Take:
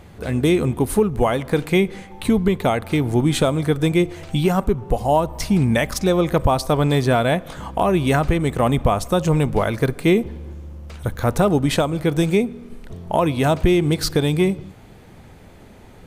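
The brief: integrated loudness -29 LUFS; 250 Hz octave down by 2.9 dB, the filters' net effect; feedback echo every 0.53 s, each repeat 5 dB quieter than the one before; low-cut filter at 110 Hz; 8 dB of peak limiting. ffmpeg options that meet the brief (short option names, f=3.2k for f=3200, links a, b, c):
-af "highpass=110,equalizer=f=250:t=o:g=-4,alimiter=limit=-13dB:level=0:latency=1,aecho=1:1:530|1060|1590|2120|2650|3180|3710:0.562|0.315|0.176|0.0988|0.0553|0.031|0.0173,volume=-6dB"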